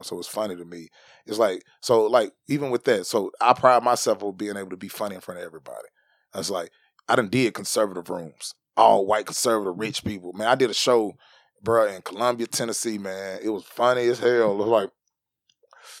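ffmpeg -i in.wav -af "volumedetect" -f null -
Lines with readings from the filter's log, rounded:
mean_volume: -24.1 dB
max_volume: -1.6 dB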